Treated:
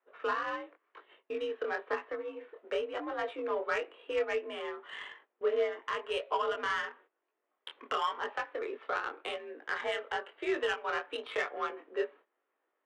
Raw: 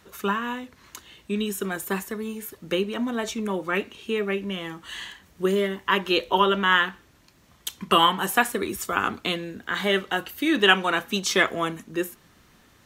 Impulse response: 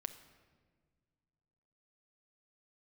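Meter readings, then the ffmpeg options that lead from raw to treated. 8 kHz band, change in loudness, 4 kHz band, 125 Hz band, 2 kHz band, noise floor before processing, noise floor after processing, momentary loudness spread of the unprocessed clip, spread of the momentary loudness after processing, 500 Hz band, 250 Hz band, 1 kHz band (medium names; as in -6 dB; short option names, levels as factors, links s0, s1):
under -20 dB, -11.0 dB, -16.5 dB, under -30 dB, -11.5 dB, -58 dBFS, -84 dBFS, 16 LU, 9 LU, -6.5 dB, -19.0 dB, -10.5 dB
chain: -af "acompressor=threshold=0.0631:ratio=2.5,highpass=f=350:t=q:w=0.5412,highpass=f=350:t=q:w=1.307,lowpass=f=3400:t=q:w=0.5176,lowpass=f=3400:t=q:w=0.7071,lowpass=f=3400:t=q:w=1.932,afreqshift=55,agate=range=0.141:threshold=0.00316:ratio=16:detection=peak,aeval=exprs='0.299*(cos(1*acos(clip(val(0)/0.299,-1,1)))-cos(1*PI/2))+0.0133*(cos(5*acos(clip(val(0)/0.299,-1,1)))-cos(5*PI/2))':c=same,alimiter=limit=0.133:level=0:latency=1:release=457,flanger=delay=18.5:depth=7.5:speed=0.95,adynamicsmooth=sensitivity=2:basefreq=1700"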